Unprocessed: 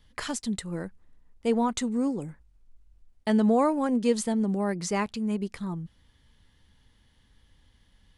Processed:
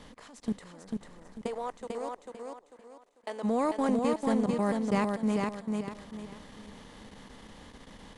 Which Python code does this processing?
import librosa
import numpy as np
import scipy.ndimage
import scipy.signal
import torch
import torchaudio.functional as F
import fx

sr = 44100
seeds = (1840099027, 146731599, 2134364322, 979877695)

y = fx.bin_compress(x, sr, power=0.6)
y = fx.high_shelf(y, sr, hz=6100.0, db=-5.0)
y = fx.level_steps(y, sr, step_db=24)
y = fx.ladder_highpass(y, sr, hz=370.0, resonance_pct=25, at=(1.46, 3.43), fade=0.02)
y = fx.echo_feedback(y, sr, ms=445, feedback_pct=32, wet_db=-3.5)
y = F.gain(torch.from_numpy(y), -3.0).numpy()